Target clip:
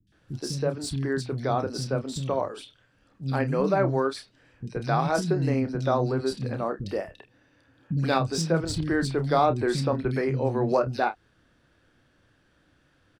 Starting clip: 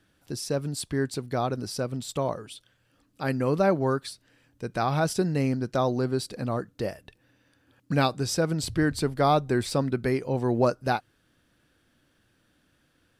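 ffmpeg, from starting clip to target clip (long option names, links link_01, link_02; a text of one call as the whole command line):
ffmpeg -i in.wav -filter_complex "[0:a]asplit=2[link_01][link_02];[link_02]acompressor=threshold=-31dB:ratio=6,volume=-1.5dB[link_03];[link_01][link_03]amix=inputs=2:normalize=0,asplit=2[link_04][link_05];[link_05]adelay=30,volume=-9.5dB[link_06];[link_04][link_06]amix=inputs=2:normalize=0,acrossover=split=240|3000[link_07][link_08][link_09];[link_09]adelay=70[link_10];[link_08]adelay=120[link_11];[link_07][link_11][link_10]amix=inputs=3:normalize=0,adynamicsmooth=sensitivity=1.5:basefreq=6400,volume=-1dB" out.wav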